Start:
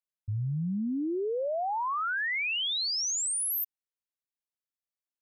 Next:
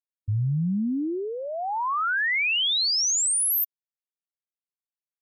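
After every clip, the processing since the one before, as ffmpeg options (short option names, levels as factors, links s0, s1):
-af "afftfilt=real='re*gte(hypot(re,im),0.002)':imag='im*gte(hypot(re,im),0.002)':win_size=1024:overlap=0.75,equalizer=f=530:w=1.1:g=-9,volume=2.24"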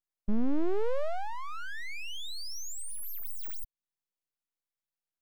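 -filter_complex "[0:a]acrossover=split=350[s0][s1];[s1]acompressor=threshold=0.0178:ratio=10[s2];[s0][s2]amix=inputs=2:normalize=0,aeval=exprs='abs(val(0))':c=same,volume=1.12"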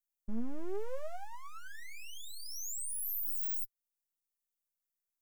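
-af "flanger=delay=7.2:depth=1.6:regen=32:speed=1.2:shape=triangular,aexciter=amount=4.5:drive=3.8:freq=5800,volume=0.501"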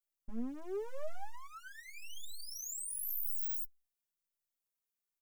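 -filter_complex "[0:a]asplit=2[s0][s1];[s1]adelay=3,afreqshift=-0.95[s2];[s0][s2]amix=inputs=2:normalize=1,volume=1.19"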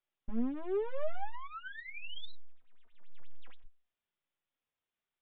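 -af "aresample=8000,aresample=44100,volume=2"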